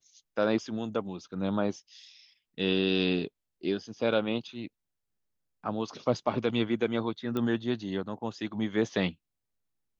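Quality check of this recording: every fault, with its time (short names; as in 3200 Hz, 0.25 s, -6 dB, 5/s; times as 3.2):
7.37 pop -20 dBFS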